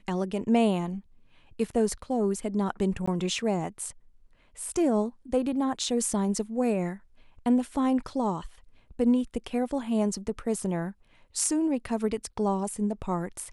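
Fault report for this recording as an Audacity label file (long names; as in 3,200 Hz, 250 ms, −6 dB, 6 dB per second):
3.060000	3.080000	drop-out 15 ms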